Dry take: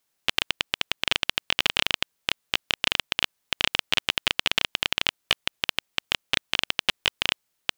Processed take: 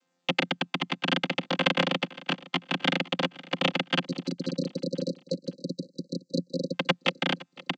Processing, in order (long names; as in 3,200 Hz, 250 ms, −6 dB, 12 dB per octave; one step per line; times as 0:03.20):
channel vocoder with a chord as carrier bare fifth, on F3
0:04.05–0:06.74: linear-phase brick-wall band-stop 580–3,900 Hz
repeating echo 513 ms, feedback 39%, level −20 dB